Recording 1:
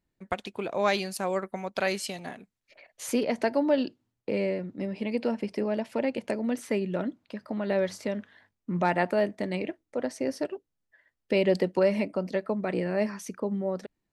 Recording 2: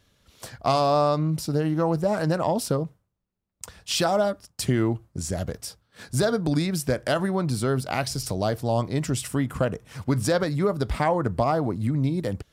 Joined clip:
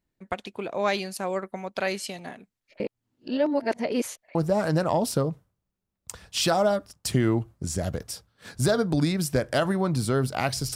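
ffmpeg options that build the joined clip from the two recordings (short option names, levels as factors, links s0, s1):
-filter_complex "[0:a]apad=whole_dur=10.75,atrim=end=10.75,asplit=2[s0][s1];[s0]atrim=end=2.802[s2];[s1]atrim=start=2.798:end=4.352,asetpts=PTS-STARTPTS,areverse[s3];[1:a]atrim=start=1.888:end=8.29[s4];[s2][s3]acrossfade=d=0.004:c1=hsin:c2=hsin[s5];[s5][s4]acrossfade=d=0.004:c1=hsin:c2=hsin"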